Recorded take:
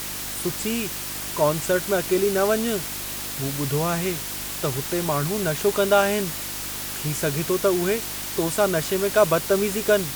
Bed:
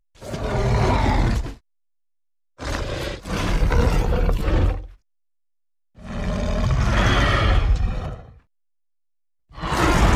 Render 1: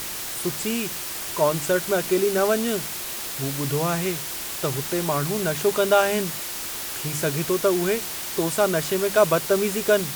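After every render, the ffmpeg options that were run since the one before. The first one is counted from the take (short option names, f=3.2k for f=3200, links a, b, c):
-af "bandreject=f=50:t=h:w=4,bandreject=f=100:t=h:w=4,bandreject=f=150:t=h:w=4,bandreject=f=200:t=h:w=4,bandreject=f=250:t=h:w=4,bandreject=f=300:t=h:w=4"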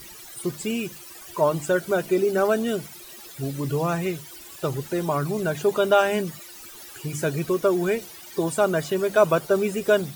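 -af "afftdn=nr=16:nf=-32"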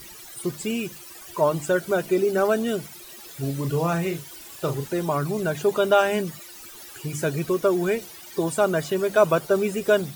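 -filter_complex "[0:a]asettb=1/sr,asplit=3[a][b][c];[a]atrim=end=3.244[d];[b]atrim=start=3.24:end=4.88,asetpts=PTS-STARTPTS,afade=t=in:d=0.004:c=qsin,afade=t=out:st=1.636:d=0.004:c=qsin,asplit=2[e][f];[f]adelay=36,volume=-8dB[g];[e][g]amix=inputs=2:normalize=0,atrim=end_sample=72324[h];[c]atrim=start=4.876[i];[d][h]acrossfade=d=0.004:c1=hsin:c2=qsin[j];[j][i]acrossfade=d=0.004:c1=qsin:c2=hsin"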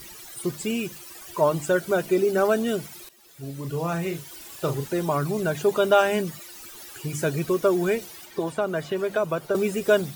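-filter_complex "[0:a]asettb=1/sr,asplit=3[a][b][c];[a]atrim=end=8.254[d];[b]atrim=start=8.25:end=9.55,asetpts=PTS-STARTPTS,afade=t=in:d=0.004:c=qsin,afade=t=out:st=1.296:d=0.004:c=qsin,acrossover=split=400|3700[e][f][g];[e]acompressor=threshold=-31dB:ratio=4[h];[f]acompressor=threshold=-24dB:ratio=4[i];[g]acompressor=threshold=-50dB:ratio=4[j];[h][i][j]amix=inputs=3:normalize=0[k];[c]atrim=start=9.546[l];[d][k]acrossfade=d=0.004:c1=hsin:c2=qsin[m];[m][l]acrossfade=d=0.004:c1=qsin:c2=hsin,asplit=2[n][o];[n]atrim=end=3.09,asetpts=PTS-STARTPTS,afade=t=out:st=3.086:d=0.004:c=hsin:silence=0.158489[p];[o]atrim=start=3.09,asetpts=PTS-STARTPTS,afade=t=in:d=1.32:silence=0.158489[q];[p][q]concat=n=2:v=0:a=1"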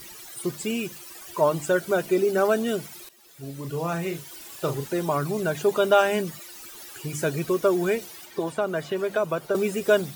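-af "lowshelf=f=120:g=-5.5"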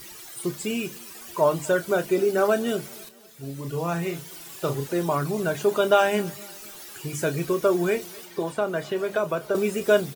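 -filter_complex "[0:a]asplit=2[a][b];[b]adelay=29,volume=-11dB[c];[a][c]amix=inputs=2:normalize=0,aecho=1:1:247|494|741:0.0631|0.0303|0.0145"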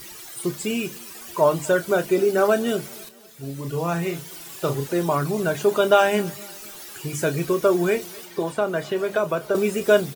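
-af "volume=2.5dB"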